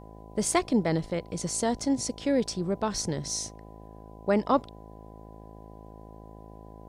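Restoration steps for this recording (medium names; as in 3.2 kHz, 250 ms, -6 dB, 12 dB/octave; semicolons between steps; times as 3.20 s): de-hum 53.7 Hz, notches 15; band-stop 1 kHz, Q 30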